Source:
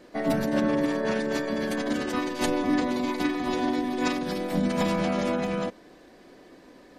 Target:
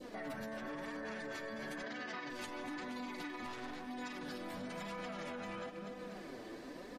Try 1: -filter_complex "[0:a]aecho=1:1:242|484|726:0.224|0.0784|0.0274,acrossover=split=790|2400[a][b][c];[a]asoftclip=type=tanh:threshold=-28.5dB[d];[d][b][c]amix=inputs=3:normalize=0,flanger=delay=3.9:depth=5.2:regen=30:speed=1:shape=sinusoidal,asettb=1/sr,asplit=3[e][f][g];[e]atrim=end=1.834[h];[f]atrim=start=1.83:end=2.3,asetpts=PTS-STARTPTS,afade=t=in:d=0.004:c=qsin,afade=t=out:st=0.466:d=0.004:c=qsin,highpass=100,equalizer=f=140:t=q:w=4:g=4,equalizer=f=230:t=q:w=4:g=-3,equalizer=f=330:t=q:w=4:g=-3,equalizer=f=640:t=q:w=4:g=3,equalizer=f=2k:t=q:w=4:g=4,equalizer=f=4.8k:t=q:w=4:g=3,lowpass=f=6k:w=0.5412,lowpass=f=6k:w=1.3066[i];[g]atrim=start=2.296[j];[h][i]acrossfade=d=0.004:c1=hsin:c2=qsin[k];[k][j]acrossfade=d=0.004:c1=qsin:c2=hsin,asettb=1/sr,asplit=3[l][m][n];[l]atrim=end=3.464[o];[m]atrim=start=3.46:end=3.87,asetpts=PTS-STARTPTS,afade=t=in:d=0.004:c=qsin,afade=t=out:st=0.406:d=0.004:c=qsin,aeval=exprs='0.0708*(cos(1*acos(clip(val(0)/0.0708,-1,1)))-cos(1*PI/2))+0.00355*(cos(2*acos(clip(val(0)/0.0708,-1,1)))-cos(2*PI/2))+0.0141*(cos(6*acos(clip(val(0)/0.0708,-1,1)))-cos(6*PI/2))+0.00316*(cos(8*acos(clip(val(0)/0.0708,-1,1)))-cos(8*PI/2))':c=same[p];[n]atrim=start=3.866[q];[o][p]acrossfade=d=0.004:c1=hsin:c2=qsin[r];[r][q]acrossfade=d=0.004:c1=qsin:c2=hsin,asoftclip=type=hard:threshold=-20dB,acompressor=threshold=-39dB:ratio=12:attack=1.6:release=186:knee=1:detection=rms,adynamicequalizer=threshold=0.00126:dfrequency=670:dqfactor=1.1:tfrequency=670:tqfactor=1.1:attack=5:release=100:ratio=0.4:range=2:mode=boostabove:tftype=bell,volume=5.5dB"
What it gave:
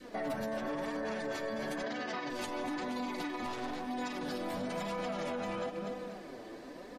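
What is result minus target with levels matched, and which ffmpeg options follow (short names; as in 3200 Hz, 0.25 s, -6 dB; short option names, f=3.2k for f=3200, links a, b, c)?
compressor: peak gain reduction -6 dB; 2000 Hz band -3.5 dB
-filter_complex "[0:a]aecho=1:1:242|484|726:0.224|0.0784|0.0274,acrossover=split=790|2400[a][b][c];[a]asoftclip=type=tanh:threshold=-28.5dB[d];[d][b][c]amix=inputs=3:normalize=0,flanger=delay=3.9:depth=5.2:regen=30:speed=1:shape=sinusoidal,asettb=1/sr,asplit=3[e][f][g];[e]atrim=end=1.834[h];[f]atrim=start=1.83:end=2.3,asetpts=PTS-STARTPTS,afade=t=in:d=0.004:c=qsin,afade=t=out:st=0.466:d=0.004:c=qsin,highpass=100,equalizer=f=140:t=q:w=4:g=4,equalizer=f=230:t=q:w=4:g=-3,equalizer=f=330:t=q:w=4:g=-3,equalizer=f=640:t=q:w=4:g=3,equalizer=f=2k:t=q:w=4:g=4,equalizer=f=4.8k:t=q:w=4:g=3,lowpass=f=6k:w=0.5412,lowpass=f=6k:w=1.3066[i];[g]atrim=start=2.296[j];[h][i]acrossfade=d=0.004:c1=hsin:c2=qsin[k];[k][j]acrossfade=d=0.004:c1=qsin:c2=hsin,asettb=1/sr,asplit=3[l][m][n];[l]atrim=end=3.464[o];[m]atrim=start=3.46:end=3.87,asetpts=PTS-STARTPTS,afade=t=in:d=0.004:c=qsin,afade=t=out:st=0.406:d=0.004:c=qsin,aeval=exprs='0.0708*(cos(1*acos(clip(val(0)/0.0708,-1,1)))-cos(1*PI/2))+0.00355*(cos(2*acos(clip(val(0)/0.0708,-1,1)))-cos(2*PI/2))+0.0141*(cos(6*acos(clip(val(0)/0.0708,-1,1)))-cos(6*PI/2))+0.00316*(cos(8*acos(clip(val(0)/0.0708,-1,1)))-cos(8*PI/2))':c=same[p];[n]atrim=start=3.866[q];[o][p]acrossfade=d=0.004:c1=hsin:c2=qsin[r];[r][q]acrossfade=d=0.004:c1=qsin:c2=hsin,asoftclip=type=hard:threshold=-20dB,acompressor=threshold=-45.5dB:ratio=12:attack=1.6:release=186:knee=1:detection=rms,adynamicequalizer=threshold=0.00126:dfrequency=1700:dqfactor=1.1:tfrequency=1700:tqfactor=1.1:attack=5:release=100:ratio=0.4:range=2:mode=boostabove:tftype=bell,volume=5.5dB"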